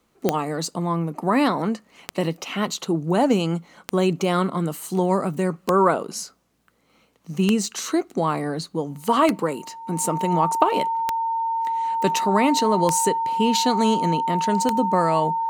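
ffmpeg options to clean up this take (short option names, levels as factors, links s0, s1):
-af "adeclick=t=4,bandreject=f=910:w=30"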